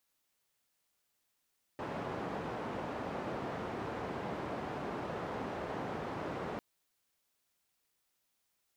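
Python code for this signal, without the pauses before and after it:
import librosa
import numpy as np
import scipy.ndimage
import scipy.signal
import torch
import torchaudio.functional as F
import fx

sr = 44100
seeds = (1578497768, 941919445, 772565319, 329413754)

y = fx.band_noise(sr, seeds[0], length_s=4.8, low_hz=94.0, high_hz=800.0, level_db=-39.5)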